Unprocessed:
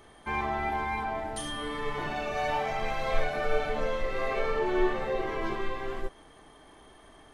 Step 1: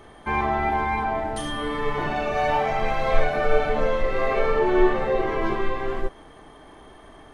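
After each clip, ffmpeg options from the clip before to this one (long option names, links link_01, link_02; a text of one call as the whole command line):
ffmpeg -i in.wav -af "highshelf=frequency=2900:gain=-8,volume=8dB" out.wav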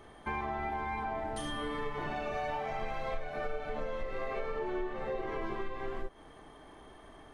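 ffmpeg -i in.wav -af "acompressor=threshold=-26dB:ratio=6,volume=-6.5dB" out.wav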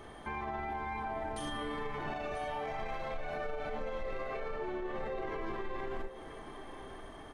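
ffmpeg -i in.wav -af "alimiter=level_in=10.5dB:limit=-24dB:level=0:latency=1:release=38,volume=-10.5dB,aecho=1:1:988:0.251,volume=4dB" out.wav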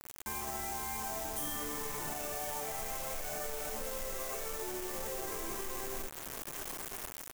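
ffmpeg -i in.wav -af "acrusher=bits=6:mix=0:aa=0.000001,alimiter=level_in=9.5dB:limit=-24dB:level=0:latency=1:release=26,volume=-9.5dB,aexciter=amount=2.2:drive=8.3:freq=5900" out.wav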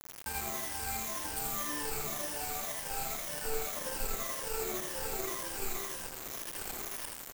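ffmpeg -i in.wav -af "afftfilt=real='re*pow(10,23/40*sin(2*PI*(1.2*log(max(b,1)*sr/1024/100)/log(2)-(-1.9)*(pts-256)/sr)))':imag='im*pow(10,23/40*sin(2*PI*(1.2*log(max(b,1)*sr/1024/100)/log(2)-(-1.9)*(pts-256)/sr)))':win_size=1024:overlap=0.75,acrusher=bits=4:mix=0:aa=0.5,aecho=1:1:81:0.631,volume=-5dB" out.wav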